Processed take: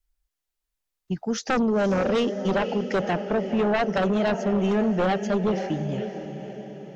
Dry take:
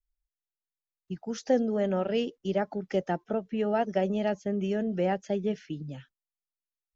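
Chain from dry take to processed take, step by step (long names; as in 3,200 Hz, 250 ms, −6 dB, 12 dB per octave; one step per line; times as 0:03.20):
feedback delay with all-pass diffusion 529 ms, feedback 50%, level −11 dB
sine wavefolder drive 10 dB, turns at −13 dBFS
level −5 dB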